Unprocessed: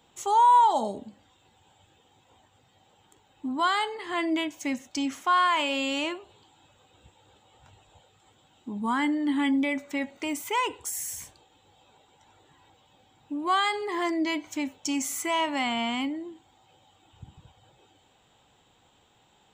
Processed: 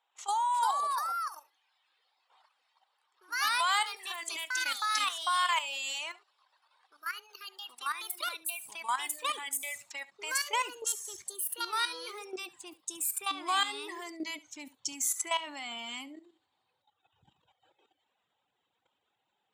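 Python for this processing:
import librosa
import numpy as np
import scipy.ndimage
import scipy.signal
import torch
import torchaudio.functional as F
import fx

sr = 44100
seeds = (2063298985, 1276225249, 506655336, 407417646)

p1 = fx.env_lowpass(x, sr, base_hz=2300.0, full_db=-25.5)
p2 = fx.dereverb_blind(p1, sr, rt60_s=1.6)
p3 = fx.filter_sweep_highpass(p2, sr, from_hz=840.0, to_hz=74.0, start_s=10.37, end_s=10.96, q=1.2)
p4 = fx.level_steps(p3, sr, step_db=13)
p5 = fx.echo_pitch(p4, sr, ms=389, semitones=3, count=2, db_per_echo=-3.0)
p6 = fx.riaa(p5, sr, side='recording')
p7 = p6 + fx.echo_single(p6, sr, ms=71, db=-20.0, dry=0)
y = p7 * librosa.db_to_amplitude(-2.5)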